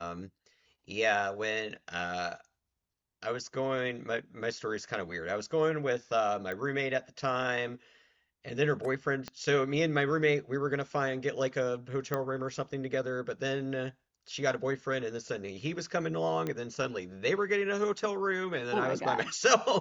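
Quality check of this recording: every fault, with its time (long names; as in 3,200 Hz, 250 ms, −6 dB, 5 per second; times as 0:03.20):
0:06.52: click −24 dBFS
0:09.28: click −23 dBFS
0:12.14: click −17 dBFS
0:16.47: click −21 dBFS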